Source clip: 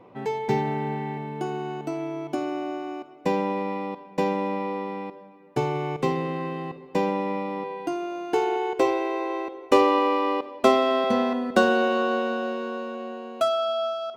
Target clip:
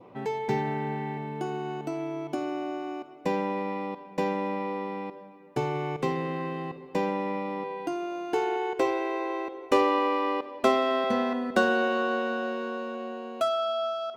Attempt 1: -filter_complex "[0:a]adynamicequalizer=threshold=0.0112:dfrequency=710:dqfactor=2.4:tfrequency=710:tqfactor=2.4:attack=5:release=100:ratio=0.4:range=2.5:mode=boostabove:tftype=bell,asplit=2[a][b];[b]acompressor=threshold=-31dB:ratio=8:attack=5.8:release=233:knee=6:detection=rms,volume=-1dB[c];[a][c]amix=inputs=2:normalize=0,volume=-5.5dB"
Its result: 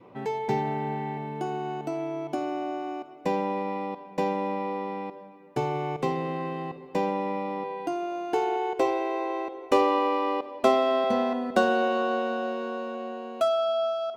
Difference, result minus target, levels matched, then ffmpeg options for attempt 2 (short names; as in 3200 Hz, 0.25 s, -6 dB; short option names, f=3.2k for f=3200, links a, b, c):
2000 Hz band -3.5 dB
-filter_complex "[0:a]adynamicequalizer=threshold=0.0112:dfrequency=1700:dqfactor=2.4:tfrequency=1700:tqfactor=2.4:attack=5:release=100:ratio=0.4:range=2.5:mode=boostabove:tftype=bell,asplit=2[a][b];[b]acompressor=threshold=-31dB:ratio=8:attack=5.8:release=233:knee=6:detection=rms,volume=-1dB[c];[a][c]amix=inputs=2:normalize=0,volume=-5.5dB"